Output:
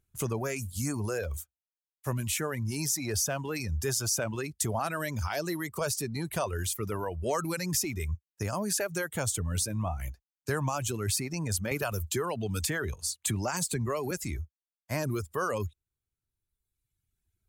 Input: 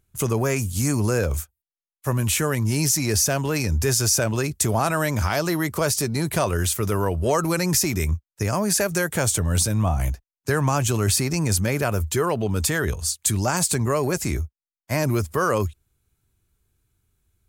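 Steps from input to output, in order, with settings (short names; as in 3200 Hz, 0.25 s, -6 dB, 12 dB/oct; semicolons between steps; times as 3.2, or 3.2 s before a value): reverb removal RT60 1.5 s; 11.71–14.11 three-band squash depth 70%; gain -8 dB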